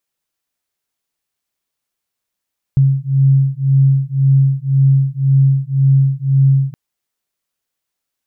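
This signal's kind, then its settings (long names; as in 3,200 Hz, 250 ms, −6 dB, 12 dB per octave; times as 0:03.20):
two tones that beat 135 Hz, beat 1.9 Hz, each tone −12.5 dBFS 3.97 s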